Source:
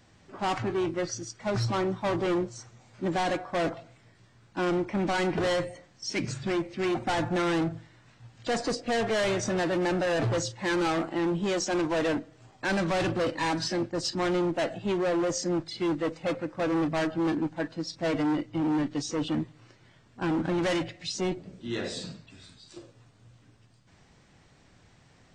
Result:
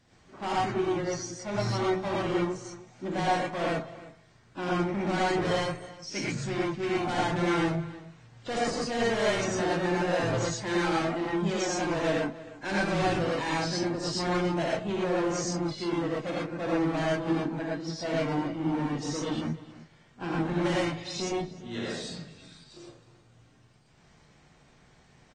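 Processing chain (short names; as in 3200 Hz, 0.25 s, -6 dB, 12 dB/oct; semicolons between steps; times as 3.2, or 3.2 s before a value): outdoor echo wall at 53 m, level -17 dB; non-linear reverb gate 0.14 s rising, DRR -5 dB; gain -6.5 dB; AAC 32 kbps 32000 Hz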